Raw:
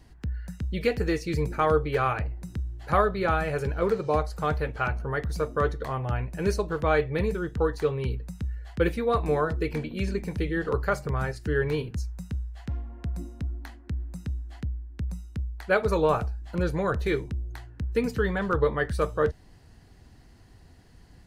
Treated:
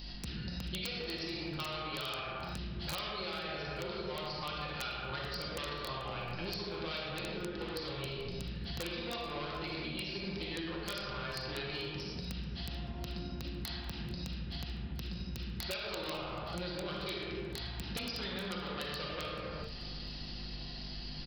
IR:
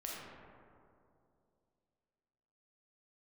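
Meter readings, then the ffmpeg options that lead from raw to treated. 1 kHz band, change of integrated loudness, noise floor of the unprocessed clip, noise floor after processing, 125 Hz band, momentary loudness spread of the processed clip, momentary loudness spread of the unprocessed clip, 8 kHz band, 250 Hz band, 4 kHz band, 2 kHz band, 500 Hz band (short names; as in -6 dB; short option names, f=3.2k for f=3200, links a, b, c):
-12.5 dB, -11.0 dB, -53 dBFS, -43 dBFS, -12.5 dB, 4 LU, 11 LU, -3.0 dB, -10.5 dB, +6.5 dB, -9.0 dB, -15.5 dB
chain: -filter_complex "[0:a]asoftclip=type=tanh:threshold=-24.5dB,aexciter=amount=6.9:drive=0.9:freq=2.6k,aeval=exprs='val(0)+0.00501*(sin(2*PI*50*n/s)+sin(2*PI*2*50*n/s)/2+sin(2*PI*3*50*n/s)/3+sin(2*PI*4*50*n/s)/4+sin(2*PI*5*50*n/s)/5)':c=same,lowshelf=f=200:g=-6.5,aecho=1:1:5.7:0.38[a];[1:a]atrim=start_sample=2205,afade=t=out:st=0.45:d=0.01,atrim=end_sample=20286[b];[a][b]afir=irnorm=-1:irlink=0,aresample=11025,aresample=44100,aemphasis=mode=production:type=50kf,bandreject=f=460:w=12,acompressor=threshold=-44dB:ratio=12,aeval=exprs='(mod(59.6*val(0)+1,2)-1)/59.6':c=same,aecho=1:1:436|872|1308:0.119|0.0475|0.019,volume=7.5dB"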